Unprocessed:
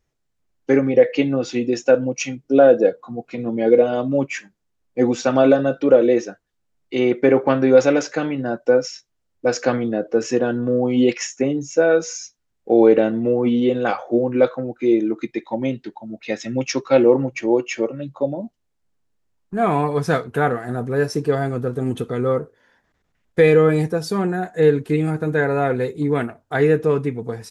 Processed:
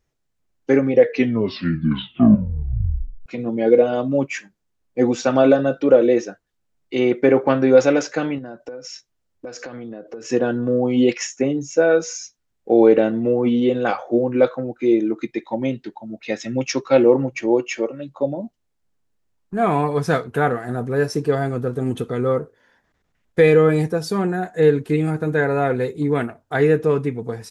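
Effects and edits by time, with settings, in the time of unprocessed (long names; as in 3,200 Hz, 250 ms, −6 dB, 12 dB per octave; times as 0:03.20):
0:01.00: tape stop 2.26 s
0:08.38–0:10.30: downward compressor 20 to 1, threshold −29 dBFS
0:17.68–0:18.19: parametric band 100 Hz −8.5 dB 1.9 octaves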